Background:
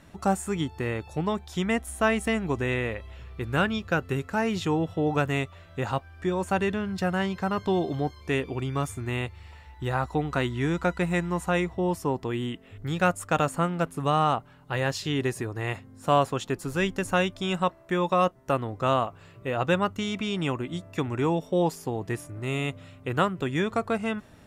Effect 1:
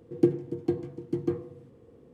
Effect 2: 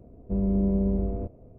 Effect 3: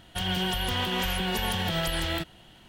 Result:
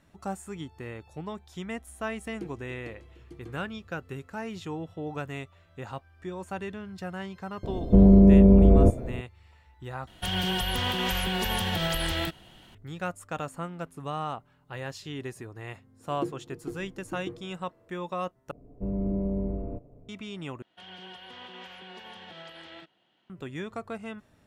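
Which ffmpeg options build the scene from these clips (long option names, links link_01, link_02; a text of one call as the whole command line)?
ffmpeg -i bed.wav -i cue0.wav -i cue1.wav -i cue2.wav -filter_complex "[1:a]asplit=2[link_01][link_02];[2:a]asplit=2[link_03][link_04];[3:a]asplit=2[link_05][link_06];[0:a]volume=-10dB[link_07];[link_01]tiltshelf=frequency=970:gain=-8[link_08];[link_03]alimiter=level_in=23.5dB:limit=-1dB:release=50:level=0:latency=1[link_09];[link_04]aecho=1:1:6.9:0.48[link_10];[link_06]highpass=250,lowpass=4000[link_11];[link_07]asplit=4[link_12][link_13][link_14][link_15];[link_12]atrim=end=10.074[link_16];[link_05]atrim=end=2.68[link_17];[link_13]atrim=start=12.746:end=18.514[link_18];[link_10]atrim=end=1.58,asetpts=PTS-STARTPTS,volume=-3.5dB[link_19];[link_14]atrim=start=20.086:end=20.624[link_20];[link_11]atrim=end=2.68,asetpts=PTS-STARTPTS,volume=-15dB[link_21];[link_15]atrim=start=23.296[link_22];[link_08]atrim=end=2.13,asetpts=PTS-STARTPTS,volume=-12.5dB,afade=type=in:duration=0.004:curve=hsin,afade=type=out:start_time=2.126:duration=0.004:curve=hsin,adelay=2180[link_23];[link_09]atrim=end=1.58,asetpts=PTS-STARTPTS,volume=-7.5dB,afade=type=in:duration=0.004:curve=hsin,afade=type=out:start_time=1.576:duration=0.004:curve=hsin,adelay=7630[link_24];[link_02]atrim=end=2.13,asetpts=PTS-STARTPTS,volume=-10dB,afade=type=in:duration=0.004:curve=hsin,afade=type=out:start_time=2.126:duration=0.004:curve=hsin,adelay=15990[link_25];[link_16][link_17]acrossfade=duration=0.004:curve1=hsin:curve2=hsin[link_26];[link_26][link_18]acrossfade=duration=0.004:curve1=hsin:curve2=hsin[link_27];[link_27][link_19]acrossfade=duration=0.004:curve1=hsin:curve2=hsin[link_28];[link_28][link_20]acrossfade=duration=0.004:curve1=hsin:curve2=hsin[link_29];[link_29][link_21]acrossfade=duration=0.004:curve1=hsin:curve2=hsin[link_30];[link_30][link_22]acrossfade=duration=0.004:curve1=hsin:curve2=hsin[link_31];[link_31][link_23][link_24][link_25]amix=inputs=4:normalize=0" out.wav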